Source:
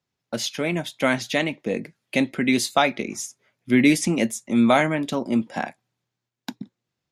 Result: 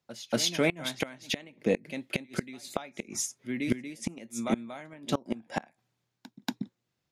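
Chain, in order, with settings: pre-echo 0.235 s -16.5 dB; flipped gate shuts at -13 dBFS, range -25 dB

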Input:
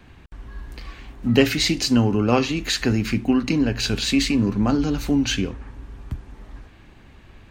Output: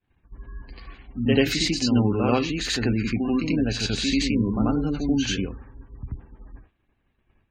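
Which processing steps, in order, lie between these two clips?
reverse echo 88 ms -4 dB; spectral gate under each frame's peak -30 dB strong; expander -33 dBFS; gain -4 dB

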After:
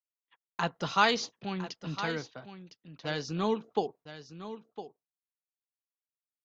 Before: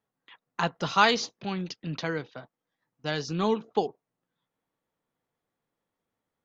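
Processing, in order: gate -49 dBFS, range -38 dB; echo 1.008 s -12.5 dB; gain -3.5 dB

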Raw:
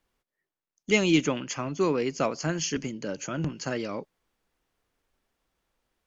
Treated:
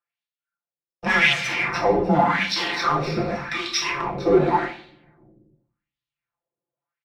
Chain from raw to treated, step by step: sample leveller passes 5; frequency shift -170 Hz; reverb RT60 0.85 s, pre-delay 5 ms, DRR -1 dB; varispeed -14%; spectral repair 1.35–1.59, 1900–5900 Hz after; LFO band-pass sine 0.87 Hz 420–3600 Hz; comb 5.8 ms; gain +2 dB

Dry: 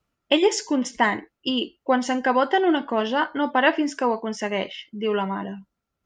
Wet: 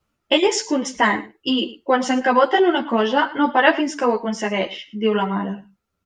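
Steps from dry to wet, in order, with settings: on a send: echo 0.109 s -18 dB; on the sum: ensemble effect; gain +7 dB

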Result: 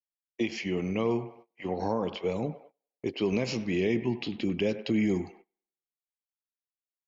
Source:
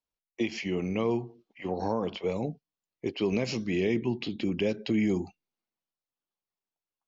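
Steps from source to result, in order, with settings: band-limited delay 99 ms, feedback 46%, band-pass 1100 Hz, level -10 dB; gate -51 dBFS, range -24 dB

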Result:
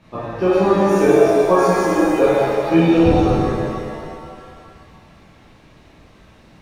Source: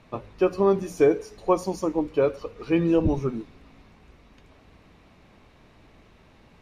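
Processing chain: reverb removal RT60 1.9 s; shimmer reverb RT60 2.3 s, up +7 st, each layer -8 dB, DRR -11 dB; gain -1.5 dB

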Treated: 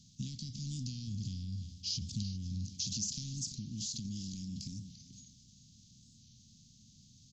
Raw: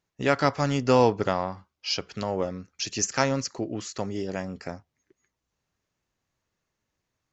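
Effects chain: per-bin compression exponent 0.6; high shelf 6400 Hz -6.5 dB; compressor 4:1, threshold -32 dBFS, peak gain reduction 16 dB; 1.07–2.67 bell 82 Hz +12 dB 0.77 oct; echo 0.348 s -15.5 dB; transient shaper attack -1 dB, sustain +7 dB; Chebyshev band-stop 220–3600 Hz, order 4; thinning echo 0.396 s, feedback 42%, level -17.5 dB; record warp 45 rpm, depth 100 cents

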